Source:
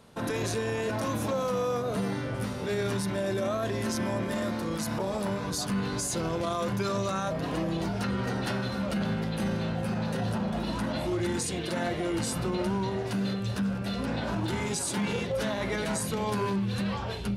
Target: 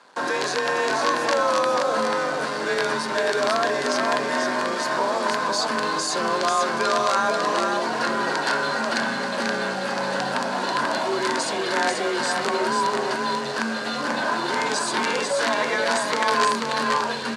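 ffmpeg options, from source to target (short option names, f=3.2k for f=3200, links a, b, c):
-af "highshelf=f=2.9k:g=-4.5,acrusher=bits=8:dc=4:mix=0:aa=0.000001,aeval=exprs='(mod(11.2*val(0)+1,2)-1)/11.2':c=same,afreqshift=28,highpass=410,equalizer=f=1k:t=q:w=4:g=8,equalizer=f=1.6k:t=q:w=4:g=8,equalizer=f=4.5k:t=q:w=4:g=7,lowpass=f=8.7k:w=0.5412,lowpass=f=8.7k:w=1.3066,aecho=1:1:488:0.631,volume=7dB"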